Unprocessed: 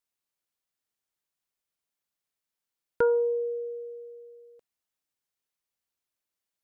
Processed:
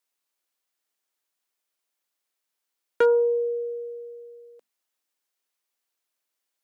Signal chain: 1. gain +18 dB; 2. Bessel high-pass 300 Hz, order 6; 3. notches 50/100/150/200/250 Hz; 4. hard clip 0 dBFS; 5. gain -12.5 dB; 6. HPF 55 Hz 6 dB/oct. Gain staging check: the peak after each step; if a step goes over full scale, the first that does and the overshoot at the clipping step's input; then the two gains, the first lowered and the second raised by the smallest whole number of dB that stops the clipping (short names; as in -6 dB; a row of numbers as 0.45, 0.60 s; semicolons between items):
+2.5, +4.0, +3.5, 0.0, -12.5, -12.0 dBFS; step 1, 3.5 dB; step 1 +14 dB, step 5 -8.5 dB